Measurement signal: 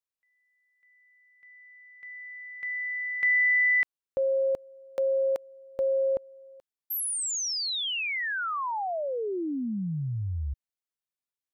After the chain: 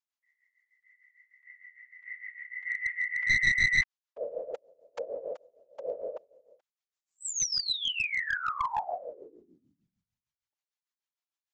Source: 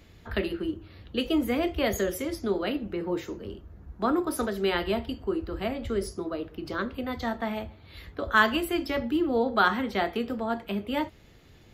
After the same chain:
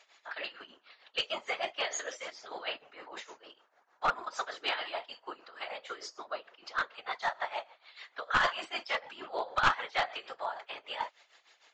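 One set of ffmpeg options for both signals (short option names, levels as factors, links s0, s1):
-af "highpass=f=720:w=0.5412,highpass=f=720:w=1.3066,afftfilt=real='hypot(re,im)*cos(2*PI*random(0))':imag='hypot(re,im)*sin(2*PI*random(1))':win_size=512:overlap=0.75,tremolo=f=6.6:d=0.78,aresample=16000,aeval=exprs='clip(val(0),-1,0.0224)':c=same,aresample=44100,volume=2.82"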